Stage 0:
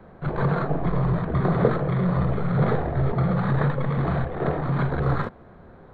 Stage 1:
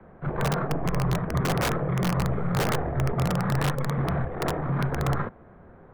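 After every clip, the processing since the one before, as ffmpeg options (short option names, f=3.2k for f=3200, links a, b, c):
-filter_complex "[0:a]lowpass=f=2.7k:w=0.5412,lowpass=f=2.7k:w=1.3066,acrossover=split=110|770[a][b][c];[b]aeval=exprs='(mod(7.94*val(0)+1,2)-1)/7.94':c=same[d];[a][d][c]amix=inputs=3:normalize=0,volume=-2.5dB"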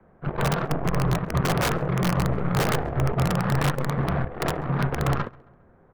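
-filter_complex "[0:a]aeval=exprs='0.188*(cos(1*acos(clip(val(0)/0.188,-1,1)))-cos(1*PI/2))+0.0168*(cos(7*acos(clip(val(0)/0.188,-1,1)))-cos(7*PI/2))':c=same,asplit=2[a][b];[b]adelay=135,lowpass=f=3k:p=1,volume=-24dB,asplit=2[c][d];[d]adelay=135,lowpass=f=3k:p=1,volume=0.49,asplit=2[e][f];[f]adelay=135,lowpass=f=3k:p=1,volume=0.49[g];[a][c][e][g]amix=inputs=4:normalize=0,volume=2dB"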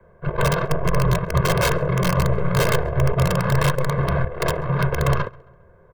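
-af "aecho=1:1:1.9:0.91,volume=1.5dB"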